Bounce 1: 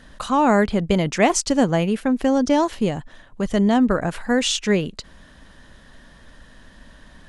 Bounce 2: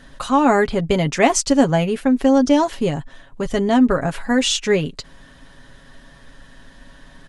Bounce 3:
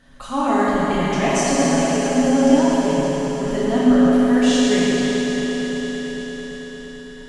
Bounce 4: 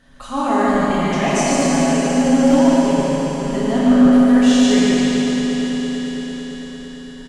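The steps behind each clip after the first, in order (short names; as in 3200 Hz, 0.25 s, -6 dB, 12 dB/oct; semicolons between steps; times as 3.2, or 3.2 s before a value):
comb 7.3 ms, depth 53%; gain +1 dB
swelling echo 0.112 s, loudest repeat 5, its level -17 dB; reverb RT60 4.1 s, pre-delay 15 ms, DRR -8 dB; gain -10 dB
hard clip -8 dBFS, distortion -25 dB; echo 0.148 s -3.5 dB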